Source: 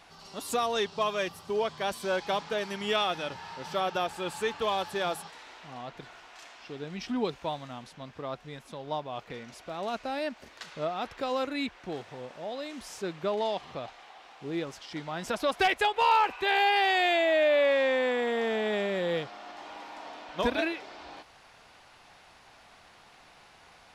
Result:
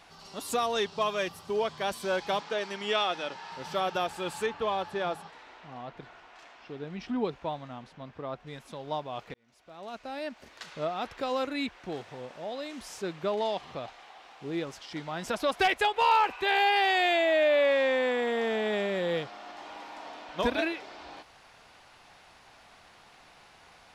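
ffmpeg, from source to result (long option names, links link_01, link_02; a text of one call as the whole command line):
ffmpeg -i in.wav -filter_complex "[0:a]asettb=1/sr,asplit=3[link_01][link_02][link_03];[link_01]atrim=end=2.404[link_04];[link_02]atrim=start=2.4:end=3.52,asetpts=PTS-STARTPTS,afade=type=in:duration=0.004:curve=qsin,afade=type=out:start_time=1.116:duration=0.004:curve=qsin,highpass=240,lowpass=8000[link_05];[link_03]atrim=start=3.516[link_06];[link_04][link_05]acrossfade=duration=0.004:curve1=hsin:curve2=qsin[link_07];[link_07][link_06]acrossfade=duration=0.004:curve1=qsin:curve2=hsin,asettb=1/sr,asplit=3[link_08][link_09][link_10];[link_08]atrim=end=4.464[link_11];[link_09]atrim=start=4.46:end=8.47,asetpts=PTS-STARTPTS,afade=type=in:duration=0.004:curve=qsin,afade=type=out:start_time=4.006:duration=0.004:curve=qsin,lowpass=frequency=2100:poles=1[link_12];[link_10]atrim=start=8.466[link_13];[link_11][link_12]acrossfade=duration=0.004:curve1=hsin:curve2=qsin[link_14];[link_14][link_13]acrossfade=duration=0.004:curve1=qsin:curve2=hsin,asplit=2[link_15][link_16];[link_15]atrim=end=9.34,asetpts=PTS-STARTPTS,afade=type=out:start_time=9.336:duration=0.004:curve=hsin[link_17];[link_16]atrim=start=9.34,asetpts=PTS-STARTPTS,afade=type=in:duration=1.36[link_18];[link_17][link_18]concat=n=2:v=0:a=1" out.wav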